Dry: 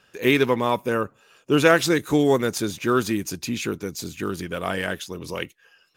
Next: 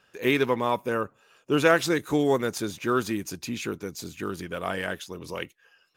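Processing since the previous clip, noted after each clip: bell 920 Hz +3 dB 2.3 oct; gain -5.5 dB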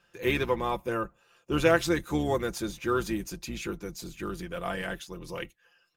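octaver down 2 oct, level -3 dB; comb 5.8 ms, depth 55%; gain -4.5 dB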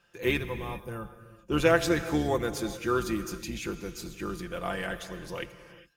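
spectral gain 0.38–1.39, 220–8500 Hz -10 dB; non-linear reverb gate 0.44 s flat, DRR 10.5 dB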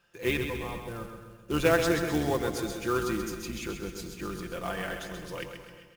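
short-mantissa float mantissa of 2-bit; feedback echo 0.131 s, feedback 50%, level -7 dB; gain -1.5 dB

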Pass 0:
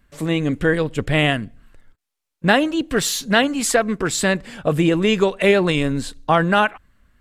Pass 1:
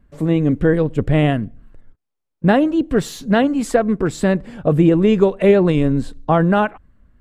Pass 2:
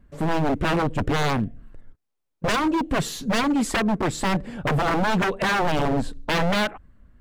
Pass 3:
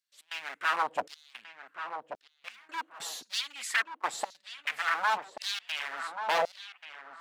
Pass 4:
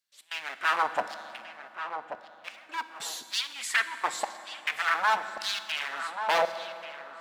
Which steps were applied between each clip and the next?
tilt shelf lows +8.5 dB, about 1200 Hz; gain -3 dB
wavefolder -16.5 dBFS
step gate "xx.xxxxxxxx.." 145 bpm -24 dB; darkening echo 1.134 s, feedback 22%, low-pass 2500 Hz, level -9.5 dB; LFO high-pass saw down 0.93 Hz 590–5000 Hz; gain -6.5 dB
reverb RT60 2.9 s, pre-delay 5 ms, DRR 10.5 dB; gain +2.5 dB

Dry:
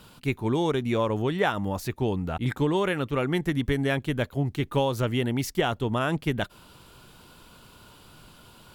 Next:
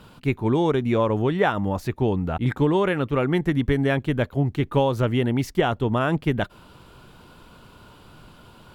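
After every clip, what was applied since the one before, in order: high shelf 3500 Hz -11 dB; gain +4.5 dB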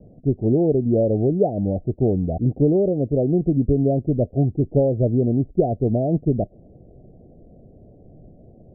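steep low-pass 720 Hz 96 dB/oct; gain +3 dB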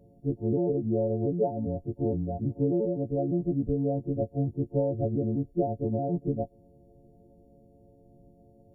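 frequency quantiser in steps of 4 st; gain -8.5 dB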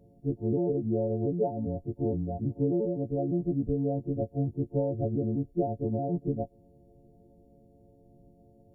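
notch 590 Hz, Q 12; gain -1 dB

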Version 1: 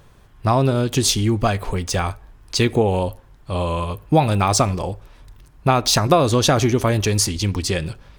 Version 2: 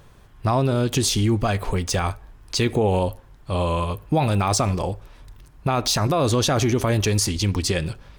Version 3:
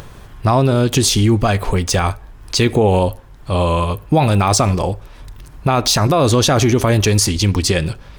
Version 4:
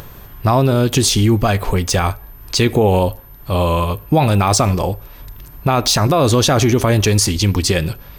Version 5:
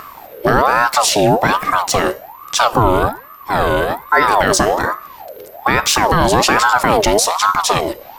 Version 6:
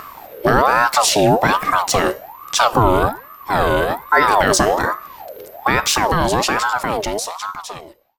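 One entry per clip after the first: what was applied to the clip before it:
limiter -11.5 dBFS, peak gain reduction 10 dB
upward compressor, threshold -35 dBFS; gain +6.5 dB
whine 13000 Hz -43 dBFS
de-hum 277.7 Hz, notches 39; ring modulator with a swept carrier 830 Hz, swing 45%, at 1.2 Hz; gain +3.5 dB
ending faded out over 2.72 s; gain -1 dB

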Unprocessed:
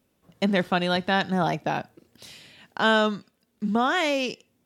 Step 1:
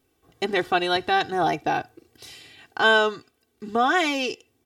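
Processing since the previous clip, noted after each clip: comb 2.6 ms, depth 85%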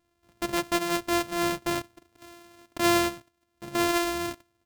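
sample sorter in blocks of 128 samples; gain -4.5 dB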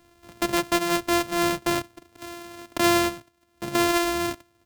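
three-band squash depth 40%; gain +3.5 dB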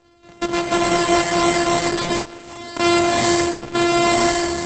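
non-linear reverb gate 0.46 s rising, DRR -6 dB; gain +2 dB; Opus 10 kbps 48000 Hz

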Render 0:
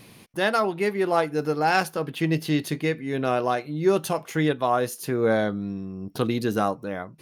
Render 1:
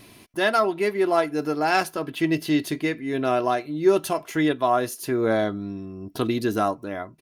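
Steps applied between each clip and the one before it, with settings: comb 3 ms, depth 49%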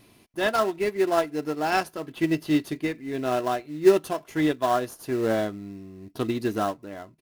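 in parallel at -10 dB: sample-rate reducer 2300 Hz, jitter 20%; on the sum: upward expander 1.5:1, over -28 dBFS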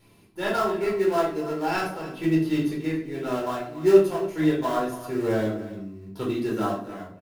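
echo 0.281 s -15 dB; shoebox room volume 550 m³, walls furnished, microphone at 4.4 m; gain -8 dB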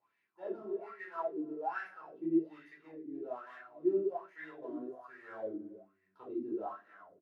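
wow and flutter 25 cents; wah 1.2 Hz 280–1900 Hz, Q 7.3; gain -4 dB

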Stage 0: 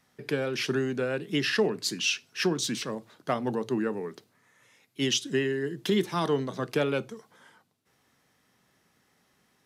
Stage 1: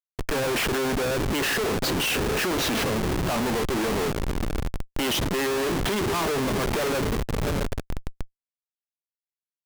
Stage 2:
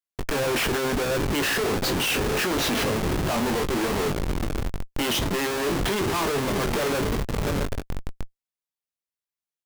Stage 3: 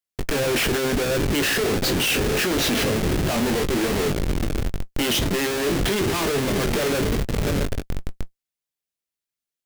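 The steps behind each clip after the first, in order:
diffused feedback echo 0.676 s, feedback 57%, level -14.5 dB; overdrive pedal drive 20 dB, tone 2100 Hz, clips at -14 dBFS; Schmitt trigger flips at -28 dBFS; gain +2 dB
doubler 21 ms -8.5 dB
bell 1000 Hz -6 dB 1 oct; in parallel at -6 dB: short-mantissa float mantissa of 2-bit

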